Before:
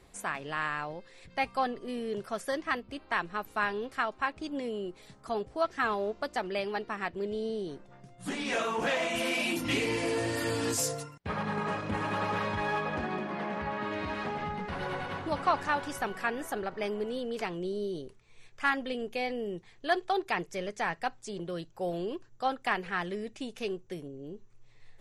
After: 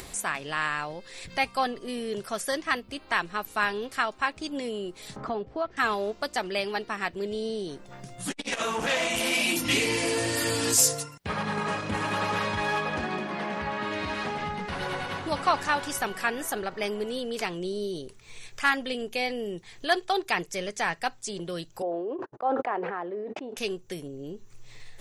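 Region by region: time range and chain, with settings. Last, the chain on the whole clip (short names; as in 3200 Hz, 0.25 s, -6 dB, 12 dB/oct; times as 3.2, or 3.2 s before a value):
5.16–5.77 tape spacing loss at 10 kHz 38 dB + three-band squash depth 70%
8.31–9.49 low shelf 120 Hz +9 dB + core saturation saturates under 650 Hz
21.82–23.57 gate -50 dBFS, range -50 dB + Butterworth band-pass 570 Hz, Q 0.79 + sustainer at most 23 dB/s
whole clip: high shelf 3000 Hz +10.5 dB; upward compressor, threshold -35 dBFS; gain +2 dB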